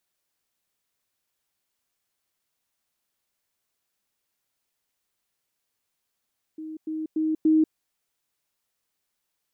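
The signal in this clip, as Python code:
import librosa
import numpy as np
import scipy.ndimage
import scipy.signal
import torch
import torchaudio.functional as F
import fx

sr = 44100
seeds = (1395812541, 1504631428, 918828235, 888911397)

y = fx.level_ladder(sr, hz=314.0, from_db=-33.5, step_db=6.0, steps=4, dwell_s=0.19, gap_s=0.1)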